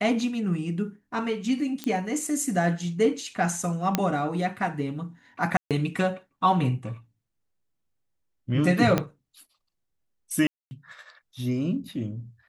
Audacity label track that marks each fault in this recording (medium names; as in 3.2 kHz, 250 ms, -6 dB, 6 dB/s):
1.840000	1.840000	pop -15 dBFS
3.950000	3.950000	pop -7 dBFS
5.570000	5.710000	dropout 137 ms
8.980000	8.980000	pop -9 dBFS
10.470000	10.710000	dropout 240 ms